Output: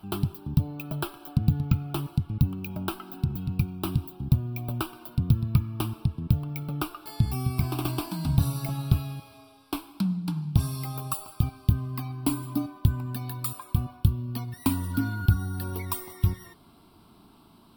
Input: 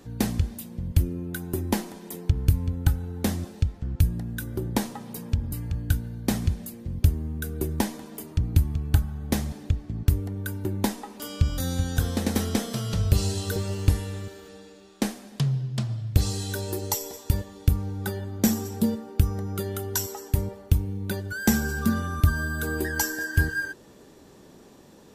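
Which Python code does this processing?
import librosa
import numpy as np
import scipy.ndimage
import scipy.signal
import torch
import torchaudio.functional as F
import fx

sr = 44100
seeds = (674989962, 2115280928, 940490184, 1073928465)

y = fx.speed_glide(x, sr, from_pct=170, to_pct=113)
y = fx.fixed_phaser(y, sr, hz=1900.0, stages=6)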